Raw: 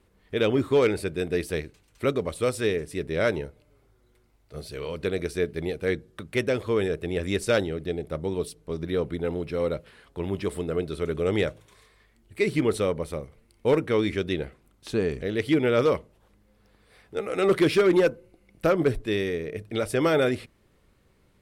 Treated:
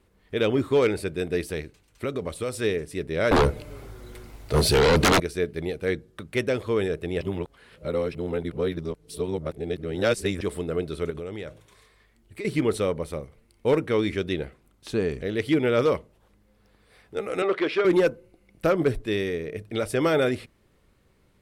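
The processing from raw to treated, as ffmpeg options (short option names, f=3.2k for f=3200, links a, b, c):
-filter_complex "[0:a]asettb=1/sr,asplit=3[a][b][c];[a]atrim=end=1.424[d];[b]atrim=start=1.42:end=2.57,asetpts=PTS-STARTPTS,afade=t=in:d=0.004:c=qsin,afade=t=out:st=1.146:d=0.004:c=qsin,acompressor=threshold=-24dB:ratio=6:attack=3.2:release=140:knee=1:detection=peak[e];[c]atrim=start=2.566[f];[d][e]acrossfade=d=0.004:c1=hsin:c2=qsin[g];[g][f]acrossfade=d=0.004:c1=qsin:c2=hsin,asettb=1/sr,asplit=3[h][i][j];[h]atrim=end=3.314[k];[i]atrim=start=3.31:end=5.2,asetpts=PTS-STARTPTS,afade=t=in:d=0.004:c=qsin,afade=t=out:st=1.886:d=0.004:c=qsin,aeval=exprs='0.188*sin(PI/2*7.08*val(0)/0.188)':c=same[l];[j]atrim=start=5.196[m];[k][l]acrossfade=d=0.004:c1=hsin:c2=qsin[n];[n][m]acrossfade=d=0.004:c1=qsin:c2=hsin,asettb=1/sr,asplit=3[o][p][q];[o]atrim=end=11.104[r];[p]atrim=start=11.1:end=12.45,asetpts=PTS-STARTPTS,afade=t=in:d=0.004:c=qsin,afade=t=out:st=1.346:d=0.004:c=qsin,acompressor=threshold=-31dB:ratio=8:attack=3.2:release=140:knee=1:detection=peak[s];[q]atrim=start=12.446[t];[r][s]acrossfade=d=0.004:c1=hsin:c2=qsin[u];[u][t]acrossfade=d=0.004:c1=qsin:c2=hsin,asettb=1/sr,asplit=3[v][w][x];[v]atrim=end=17.424[y];[w]atrim=start=17.42:end=17.85,asetpts=PTS-STARTPTS,afade=t=in:d=0.004:c=qsin,afade=t=out:st=0.426:d=0.004:c=qsin,highpass=420,lowpass=3.2k[z];[x]atrim=start=17.846[aa];[y][z]acrossfade=d=0.004:c1=hsin:c2=qsin[ab];[ab][aa]acrossfade=d=0.004:c1=qsin:c2=hsin,asplit=3[ac][ad][ae];[ac]atrim=end=7.212[af];[ad]atrim=start=7.208:end=10.412,asetpts=PTS-STARTPTS,areverse[ag];[ae]atrim=start=10.408[ah];[af][ag]acrossfade=d=0.004:c1=hsin:c2=hsin[ai];[ai][ah]acrossfade=d=0.004:c1=hsin:c2=hsin"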